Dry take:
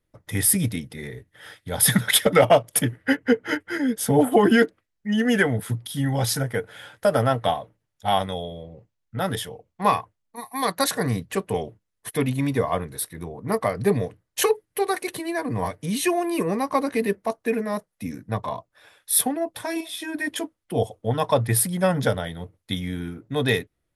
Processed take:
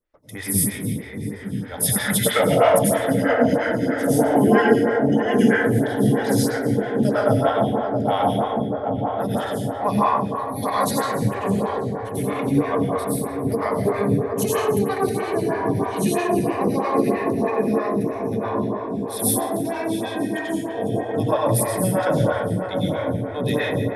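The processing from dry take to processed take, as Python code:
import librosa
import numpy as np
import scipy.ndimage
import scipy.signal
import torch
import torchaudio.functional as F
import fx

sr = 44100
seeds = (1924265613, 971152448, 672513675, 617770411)

p1 = x + fx.echo_filtered(x, sr, ms=782, feedback_pct=79, hz=1000.0, wet_db=-4.5, dry=0)
p2 = fx.rev_plate(p1, sr, seeds[0], rt60_s=1.9, hf_ratio=0.45, predelay_ms=80, drr_db=-5.5)
p3 = fx.stagger_phaser(p2, sr, hz=3.1)
y = F.gain(torch.from_numpy(p3), -2.5).numpy()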